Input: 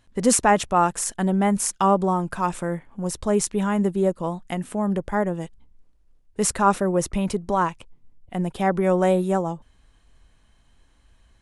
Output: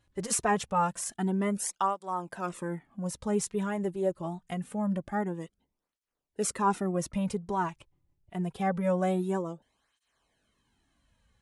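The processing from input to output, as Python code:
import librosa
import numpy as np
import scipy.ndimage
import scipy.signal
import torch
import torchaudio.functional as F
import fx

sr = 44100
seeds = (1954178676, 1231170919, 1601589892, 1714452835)

y = fx.flanger_cancel(x, sr, hz=0.25, depth_ms=4.6)
y = y * 10.0 ** (-5.5 / 20.0)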